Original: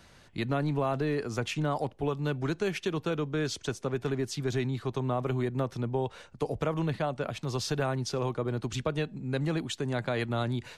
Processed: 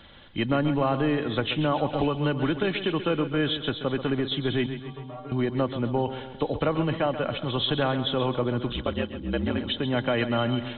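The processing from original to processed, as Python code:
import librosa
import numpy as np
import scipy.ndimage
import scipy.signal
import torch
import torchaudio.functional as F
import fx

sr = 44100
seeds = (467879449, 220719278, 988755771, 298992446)

y = fx.freq_compress(x, sr, knee_hz=2900.0, ratio=4.0)
y = fx.stiff_resonator(y, sr, f0_hz=140.0, decay_s=0.35, stiffness=0.008, at=(4.66, 5.32))
y = fx.ring_mod(y, sr, carrier_hz=61.0, at=(8.68, 9.66), fade=0.02)
y = y + 0.32 * np.pad(y, (int(3.6 * sr / 1000.0), 0))[:len(y)]
y = fx.echo_feedback(y, sr, ms=133, feedback_pct=52, wet_db=-11)
y = fx.band_squash(y, sr, depth_pct=100, at=(1.93, 2.63))
y = y * 10.0 ** (5.0 / 20.0)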